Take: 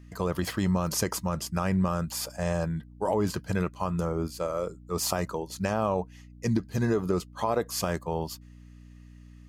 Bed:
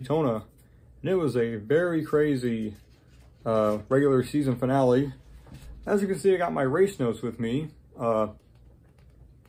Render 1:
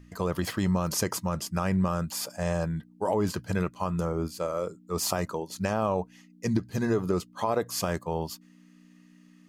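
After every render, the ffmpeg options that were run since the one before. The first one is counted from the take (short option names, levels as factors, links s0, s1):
-af "bandreject=f=60:t=h:w=4,bandreject=f=120:t=h:w=4"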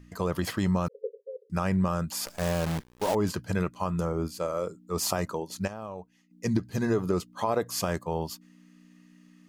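-filter_complex "[0:a]asettb=1/sr,asplit=3[s0][s1][s2];[s0]atrim=end=0.884[s3];[s1]atrim=start=0.88:end=1.5,asetpts=PTS-STARTPTS,afade=t=in:d=0.004:c=qsin,afade=t=out:st=0.616:d=0.004:c=qsin,asuperpass=centerf=470:order=20:qfactor=3.2[s4];[s2]atrim=start=1.496[s5];[s3][s4]acrossfade=d=0.004:c1=hsin:c2=qsin[s6];[s6][s5]acrossfade=d=0.004:c1=qsin:c2=hsin,asettb=1/sr,asplit=3[s7][s8][s9];[s7]atrim=end=2.264[s10];[s8]atrim=start=2.26:end=3.15,asetpts=PTS-STARTPTS,afade=t=in:d=0.004:c=qsin,afade=t=out:st=0.886:d=0.004:c=qsin,acrusher=bits=6:dc=4:mix=0:aa=0.000001[s11];[s9]atrim=start=3.146[s12];[s10][s11]acrossfade=d=0.004:c1=hsin:c2=qsin[s13];[s13][s12]acrossfade=d=0.004:c1=qsin:c2=hsin,asplit=3[s14][s15][s16];[s14]atrim=end=5.68,asetpts=PTS-STARTPTS,afade=t=out:st=5.53:d=0.15:c=log:silence=0.251189[s17];[s15]atrim=start=5.68:end=6.31,asetpts=PTS-STARTPTS,volume=0.251[s18];[s16]atrim=start=6.31,asetpts=PTS-STARTPTS,afade=t=in:d=0.15:c=log:silence=0.251189[s19];[s17][s18][s19]concat=n=3:v=0:a=1"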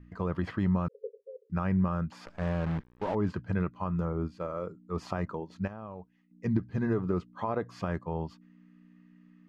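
-af "lowpass=1700,equalizer=f=610:w=0.76:g=-6"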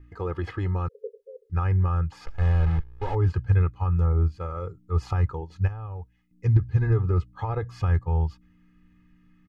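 -af "asubboost=boost=11:cutoff=96,aecho=1:1:2.4:0.87"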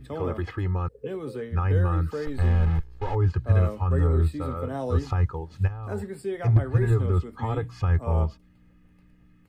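-filter_complex "[1:a]volume=0.355[s0];[0:a][s0]amix=inputs=2:normalize=0"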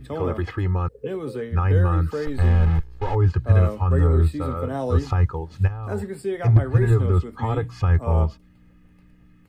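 -af "volume=1.58"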